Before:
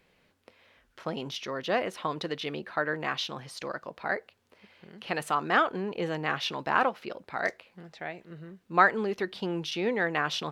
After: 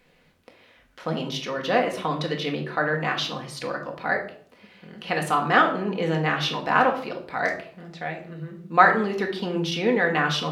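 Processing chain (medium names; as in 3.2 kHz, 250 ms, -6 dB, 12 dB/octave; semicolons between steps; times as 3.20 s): simulated room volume 690 m³, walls furnished, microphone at 1.9 m; trim +3.5 dB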